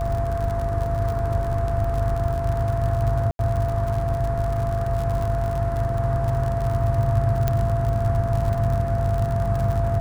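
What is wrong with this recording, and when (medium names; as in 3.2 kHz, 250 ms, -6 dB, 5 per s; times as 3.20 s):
buzz 50 Hz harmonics 11 -28 dBFS
crackle 65 per s -27 dBFS
whine 680 Hz -26 dBFS
3.31–3.39 s: dropout 82 ms
7.48 s: pop -9 dBFS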